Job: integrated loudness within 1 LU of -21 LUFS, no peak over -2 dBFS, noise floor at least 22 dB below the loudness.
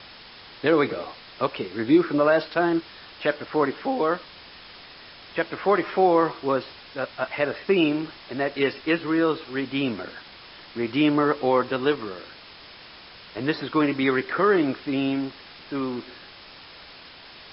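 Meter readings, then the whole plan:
noise floor -46 dBFS; noise floor target -47 dBFS; loudness -24.5 LUFS; peak level -8.0 dBFS; loudness target -21.0 LUFS
-> noise reduction 6 dB, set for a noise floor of -46 dBFS; trim +3.5 dB

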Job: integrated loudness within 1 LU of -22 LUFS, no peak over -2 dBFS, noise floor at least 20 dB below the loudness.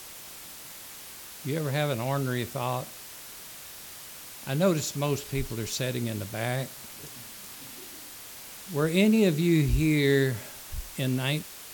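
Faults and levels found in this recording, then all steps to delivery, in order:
noise floor -44 dBFS; noise floor target -48 dBFS; loudness -27.5 LUFS; peak level -11.0 dBFS; loudness target -22.0 LUFS
-> noise reduction 6 dB, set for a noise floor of -44 dBFS; trim +5.5 dB

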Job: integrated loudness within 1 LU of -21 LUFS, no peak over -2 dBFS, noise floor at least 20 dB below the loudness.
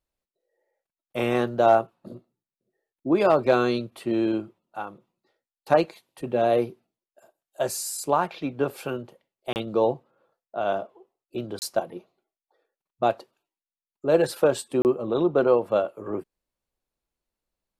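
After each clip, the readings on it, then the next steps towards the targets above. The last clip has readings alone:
dropouts 3; longest dropout 29 ms; loudness -25.0 LUFS; peak level -7.0 dBFS; loudness target -21.0 LUFS
-> interpolate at 9.53/11.59/14.82 s, 29 ms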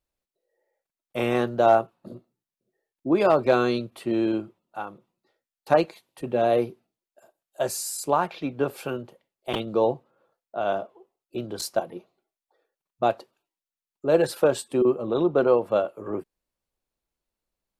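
dropouts 0; loudness -25.0 LUFS; peak level -7.0 dBFS; loudness target -21.0 LUFS
-> trim +4 dB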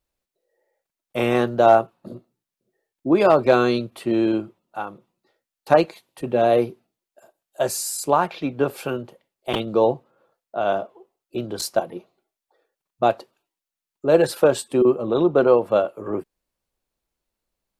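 loudness -21.0 LUFS; peak level -3.0 dBFS; noise floor -88 dBFS

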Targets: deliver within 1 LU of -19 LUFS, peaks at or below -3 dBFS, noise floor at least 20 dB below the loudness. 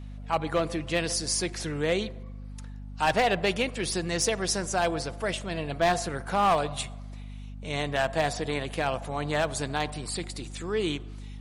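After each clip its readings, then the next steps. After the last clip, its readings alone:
clipped samples 0.4%; clipping level -17.0 dBFS; hum 50 Hz; highest harmonic 250 Hz; hum level -37 dBFS; loudness -28.5 LUFS; peak level -17.0 dBFS; loudness target -19.0 LUFS
-> clip repair -17 dBFS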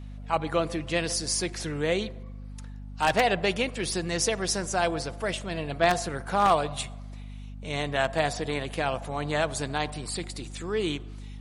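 clipped samples 0.0%; hum 50 Hz; highest harmonic 250 Hz; hum level -37 dBFS
-> hum notches 50/100/150/200/250 Hz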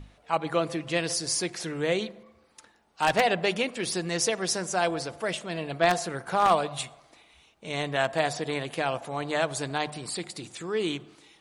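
hum not found; loudness -28.0 LUFS; peak level -7.5 dBFS; loudness target -19.0 LUFS
-> trim +9 dB; peak limiter -3 dBFS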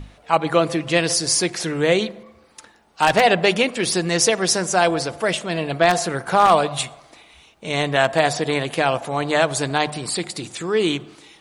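loudness -19.5 LUFS; peak level -3.0 dBFS; noise floor -53 dBFS

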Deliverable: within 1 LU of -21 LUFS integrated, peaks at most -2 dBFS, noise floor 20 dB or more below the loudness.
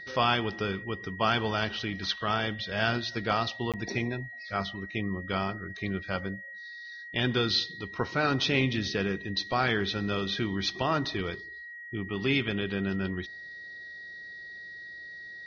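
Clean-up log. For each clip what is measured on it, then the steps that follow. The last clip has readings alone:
dropouts 1; longest dropout 17 ms; steady tone 1.9 kHz; tone level -41 dBFS; loudness -30.0 LUFS; peak level -11.5 dBFS; loudness target -21.0 LUFS
-> interpolate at 3.72 s, 17 ms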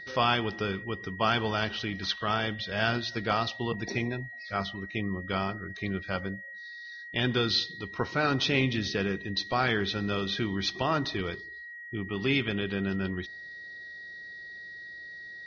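dropouts 0; steady tone 1.9 kHz; tone level -41 dBFS
-> band-stop 1.9 kHz, Q 30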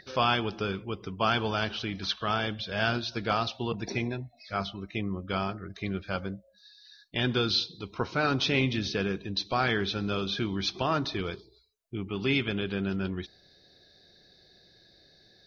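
steady tone not found; loudness -30.0 LUFS; peak level -12.0 dBFS; loudness target -21.0 LUFS
-> trim +9 dB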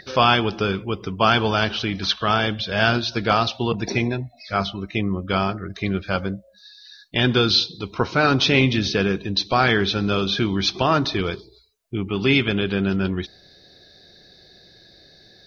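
loudness -21.0 LUFS; peak level -3.0 dBFS; noise floor -52 dBFS

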